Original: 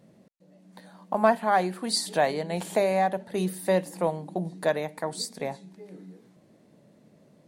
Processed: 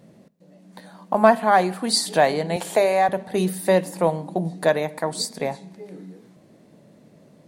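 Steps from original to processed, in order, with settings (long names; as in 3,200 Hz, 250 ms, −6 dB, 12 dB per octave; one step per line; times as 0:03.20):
0:02.56–0:03.09: high-pass filter 320 Hz 12 dB per octave
on a send: convolution reverb RT60 1.1 s, pre-delay 3 ms, DRR 20 dB
on the sum: level +6 dB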